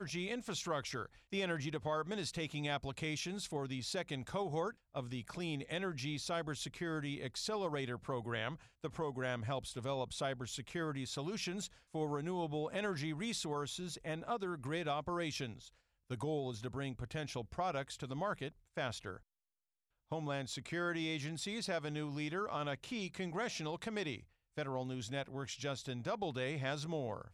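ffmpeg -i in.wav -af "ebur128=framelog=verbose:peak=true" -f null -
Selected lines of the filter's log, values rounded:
Integrated loudness:
  I:         -40.5 LUFS
  Threshold: -50.5 LUFS
Loudness range:
  LRA:         2.2 LU
  Threshold: -60.7 LUFS
  LRA low:   -41.9 LUFS
  LRA high:  -39.7 LUFS
True peak:
  Peak:      -23.8 dBFS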